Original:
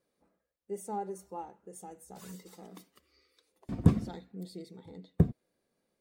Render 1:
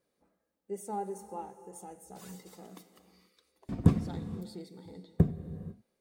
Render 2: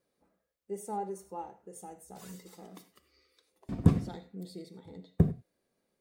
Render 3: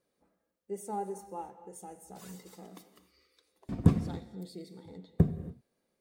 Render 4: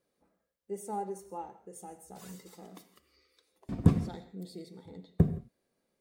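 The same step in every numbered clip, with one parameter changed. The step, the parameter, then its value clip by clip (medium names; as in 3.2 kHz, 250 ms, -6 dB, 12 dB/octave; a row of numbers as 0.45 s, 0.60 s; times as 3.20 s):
gated-style reverb, gate: 520 ms, 120 ms, 310 ms, 190 ms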